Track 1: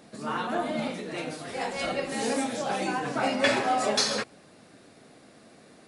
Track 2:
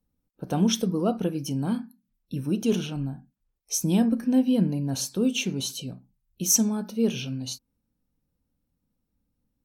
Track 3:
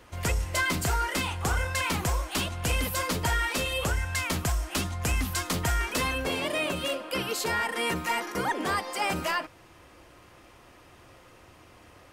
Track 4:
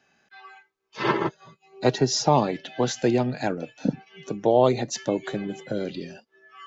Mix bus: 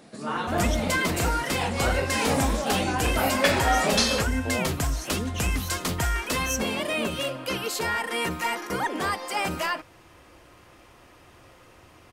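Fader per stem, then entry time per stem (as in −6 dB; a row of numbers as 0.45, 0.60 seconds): +1.5, −10.0, +1.0, −14.5 decibels; 0.00, 0.00, 0.35, 0.00 seconds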